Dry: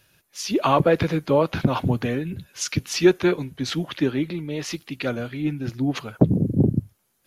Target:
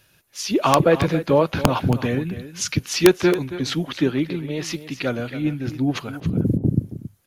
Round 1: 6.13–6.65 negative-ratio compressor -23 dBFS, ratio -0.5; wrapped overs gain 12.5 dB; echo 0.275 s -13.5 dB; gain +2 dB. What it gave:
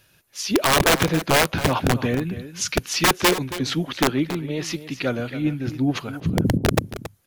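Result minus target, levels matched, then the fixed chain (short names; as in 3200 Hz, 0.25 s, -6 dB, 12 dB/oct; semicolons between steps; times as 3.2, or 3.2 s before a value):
wrapped overs: distortion +18 dB
6.13–6.65 negative-ratio compressor -23 dBFS, ratio -0.5; wrapped overs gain 5.5 dB; echo 0.275 s -13.5 dB; gain +2 dB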